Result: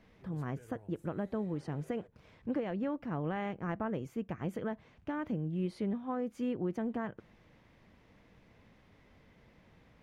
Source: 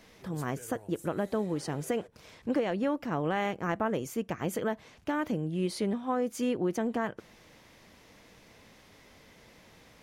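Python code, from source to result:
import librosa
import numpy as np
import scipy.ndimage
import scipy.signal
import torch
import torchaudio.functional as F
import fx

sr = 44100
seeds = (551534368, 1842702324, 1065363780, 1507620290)

y = fx.bass_treble(x, sr, bass_db=7, treble_db=-14)
y = y * librosa.db_to_amplitude(-7.5)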